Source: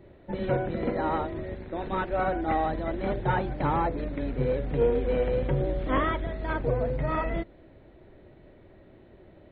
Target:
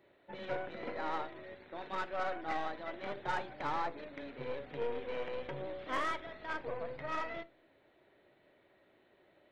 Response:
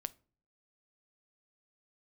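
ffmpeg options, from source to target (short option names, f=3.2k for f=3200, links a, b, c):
-filter_complex "[0:a]highpass=f=1.3k:p=1,aeval=exprs='0.1*(cos(1*acos(clip(val(0)/0.1,-1,1)))-cos(1*PI/2))+0.00562*(cos(8*acos(clip(val(0)/0.1,-1,1)))-cos(8*PI/2))':c=same[a];[1:a]atrim=start_sample=2205[b];[a][b]afir=irnorm=-1:irlink=0,volume=-1.5dB"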